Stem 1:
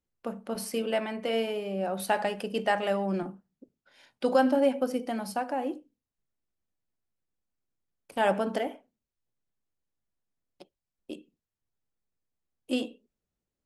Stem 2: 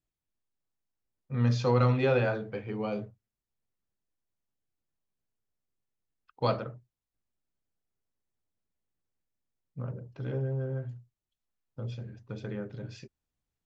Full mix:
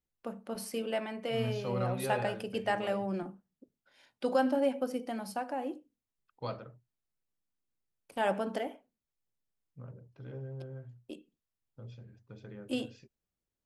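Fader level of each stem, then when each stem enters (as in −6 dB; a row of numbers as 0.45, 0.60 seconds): −5.0, −10.5 decibels; 0.00, 0.00 seconds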